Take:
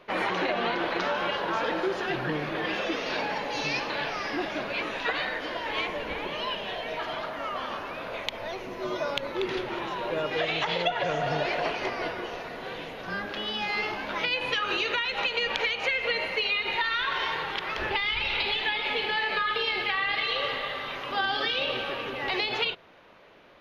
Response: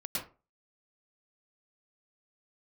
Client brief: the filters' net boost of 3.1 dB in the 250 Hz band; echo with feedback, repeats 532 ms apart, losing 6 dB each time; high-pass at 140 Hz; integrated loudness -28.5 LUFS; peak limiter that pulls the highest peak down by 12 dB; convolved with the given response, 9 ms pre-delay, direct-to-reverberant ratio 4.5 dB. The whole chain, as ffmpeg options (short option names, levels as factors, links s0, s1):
-filter_complex "[0:a]highpass=140,equalizer=f=250:t=o:g=5,alimiter=limit=0.0944:level=0:latency=1,aecho=1:1:532|1064|1596|2128|2660|3192:0.501|0.251|0.125|0.0626|0.0313|0.0157,asplit=2[s0][s1];[1:a]atrim=start_sample=2205,adelay=9[s2];[s1][s2]afir=irnorm=-1:irlink=0,volume=0.422[s3];[s0][s3]amix=inputs=2:normalize=0,volume=0.891"